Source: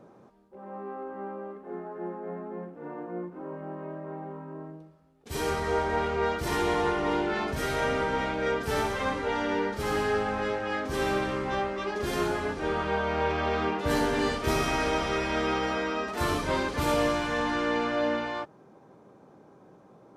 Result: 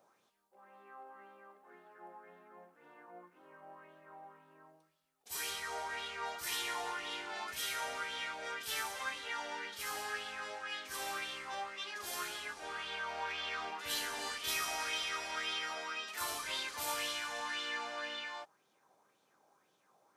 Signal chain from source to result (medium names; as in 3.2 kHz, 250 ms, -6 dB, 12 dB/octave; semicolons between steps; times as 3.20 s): pre-emphasis filter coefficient 0.97; sweeping bell 1.9 Hz 690–3500 Hz +11 dB